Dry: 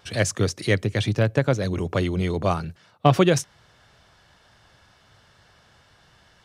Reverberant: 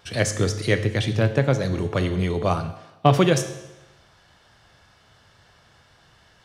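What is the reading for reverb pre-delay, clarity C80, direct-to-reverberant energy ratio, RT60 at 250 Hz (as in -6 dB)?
9 ms, 13.0 dB, 8.0 dB, 1.0 s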